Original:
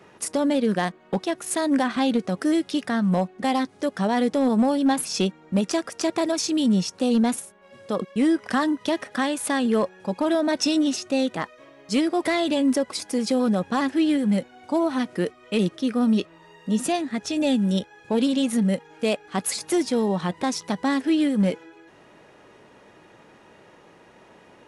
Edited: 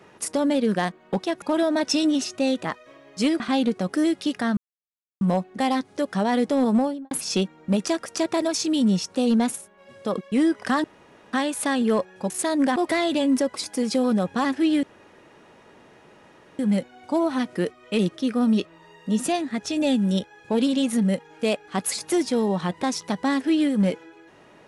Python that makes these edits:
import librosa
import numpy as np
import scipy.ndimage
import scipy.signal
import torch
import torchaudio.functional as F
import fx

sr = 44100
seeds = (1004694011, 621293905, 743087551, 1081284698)

y = fx.studio_fade_out(x, sr, start_s=4.58, length_s=0.37)
y = fx.edit(y, sr, fx.swap(start_s=1.42, length_s=0.46, other_s=10.14, other_length_s=1.98),
    fx.insert_silence(at_s=3.05, length_s=0.64),
    fx.room_tone_fill(start_s=8.68, length_s=0.49),
    fx.insert_room_tone(at_s=14.19, length_s=1.76), tone=tone)